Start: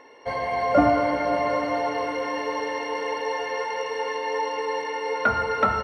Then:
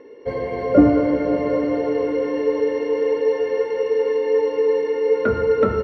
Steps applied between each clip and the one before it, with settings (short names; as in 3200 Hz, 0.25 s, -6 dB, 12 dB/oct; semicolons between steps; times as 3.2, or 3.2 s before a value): LPF 3200 Hz 6 dB/oct; resonant low shelf 580 Hz +9 dB, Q 3; gain -2.5 dB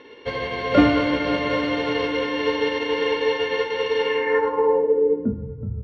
spectral whitening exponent 0.6; low-pass sweep 3400 Hz -> 120 Hz, 4.03–5.59; gain -3 dB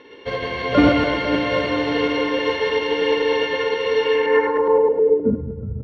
reverse delay 0.104 s, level -1.5 dB